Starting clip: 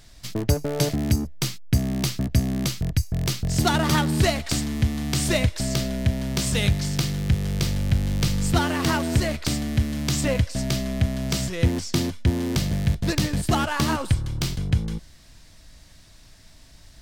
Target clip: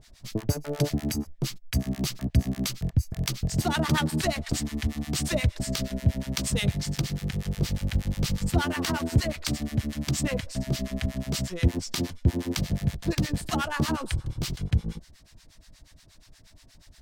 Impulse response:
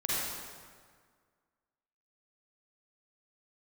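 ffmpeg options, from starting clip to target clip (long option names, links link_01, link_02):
-filter_complex "[0:a]acrossover=split=800[link_01][link_02];[link_01]aeval=exprs='val(0)*(1-1/2+1/2*cos(2*PI*8.4*n/s))':channel_layout=same[link_03];[link_02]aeval=exprs='val(0)*(1-1/2-1/2*cos(2*PI*8.4*n/s))':channel_layout=same[link_04];[link_03][link_04]amix=inputs=2:normalize=0"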